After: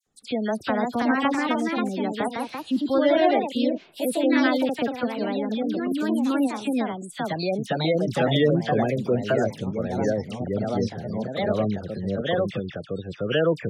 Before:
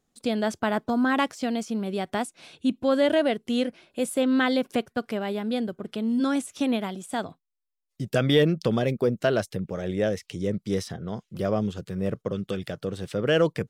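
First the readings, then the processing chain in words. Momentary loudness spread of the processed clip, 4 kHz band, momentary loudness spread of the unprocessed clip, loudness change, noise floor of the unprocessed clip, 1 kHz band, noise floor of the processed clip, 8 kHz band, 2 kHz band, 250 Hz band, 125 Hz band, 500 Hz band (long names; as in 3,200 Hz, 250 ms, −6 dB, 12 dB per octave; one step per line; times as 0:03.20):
9 LU, +0.5 dB, 10 LU, +2.0 dB, −80 dBFS, +4.0 dB, −45 dBFS, −2.5 dB, +1.5 dB, +2.0 dB, +1.0 dB, +2.0 dB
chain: all-pass dispersion lows, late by 67 ms, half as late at 2,000 Hz
gate on every frequency bin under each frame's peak −25 dB strong
delay with pitch and tempo change per echo 397 ms, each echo +2 semitones, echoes 2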